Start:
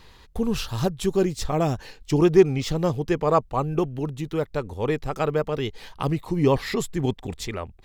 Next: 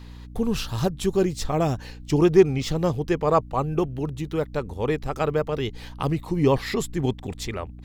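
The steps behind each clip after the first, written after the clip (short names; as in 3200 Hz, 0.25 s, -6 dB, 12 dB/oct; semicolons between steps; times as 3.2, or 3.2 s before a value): hum 60 Hz, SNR 17 dB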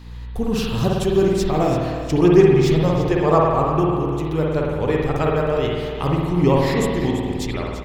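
on a send: feedback echo 0.338 s, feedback 30%, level -12 dB; on the sum: spring tank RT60 1.4 s, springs 51 ms, chirp 35 ms, DRR -2 dB; gain +1 dB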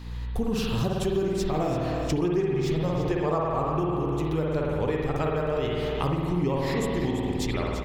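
compressor 6:1, threshold -23 dBFS, peak gain reduction 15 dB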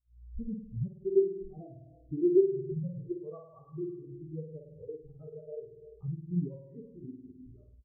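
spectral expander 4:1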